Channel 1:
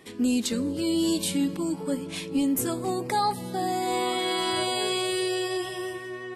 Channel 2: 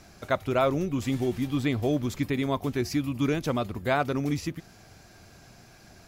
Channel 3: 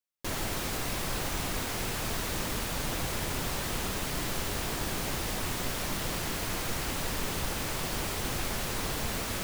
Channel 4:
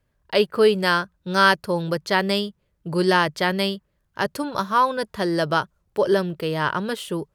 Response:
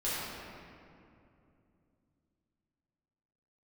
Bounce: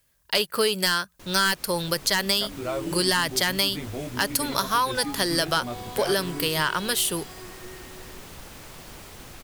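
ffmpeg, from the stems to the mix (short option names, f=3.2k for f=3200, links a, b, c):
-filter_complex "[0:a]asplit=2[a][b];[b]afreqshift=0.83[c];[a][c]amix=inputs=2:normalize=1,adelay=1850,volume=-11dB[d];[1:a]flanger=delay=16.5:depth=3.5:speed=1.4,adelay=2100,volume=-4dB[e];[2:a]dynaudnorm=f=120:g=17:m=4dB,adelay=950,volume=-14dB[f];[3:a]crystalizer=i=10:c=0,aeval=exprs='2.66*sin(PI/2*2.51*val(0)/2.66)':c=same,volume=-16.5dB[g];[d][e][f][g]amix=inputs=4:normalize=0,acompressor=threshold=-19dB:ratio=6"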